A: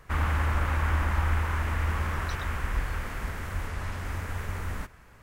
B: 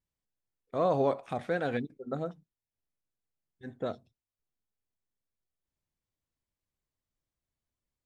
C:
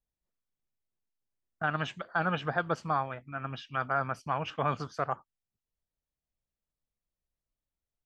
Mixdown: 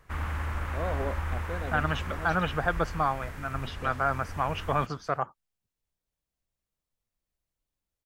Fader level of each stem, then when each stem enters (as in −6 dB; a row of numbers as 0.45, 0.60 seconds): −6.0, −7.0, +2.5 decibels; 0.00, 0.00, 0.10 seconds